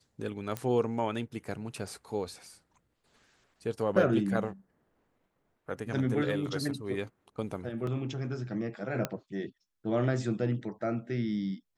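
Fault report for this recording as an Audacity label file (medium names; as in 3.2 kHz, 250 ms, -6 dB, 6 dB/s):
0.570000	0.570000	pop -19 dBFS
7.870000	7.870000	dropout 2.8 ms
9.050000	9.050000	pop -15 dBFS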